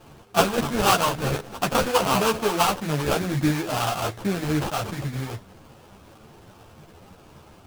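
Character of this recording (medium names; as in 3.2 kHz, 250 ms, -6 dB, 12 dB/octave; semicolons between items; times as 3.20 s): aliases and images of a low sample rate 2 kHz, jitter 20%; a shimmering, thickened sound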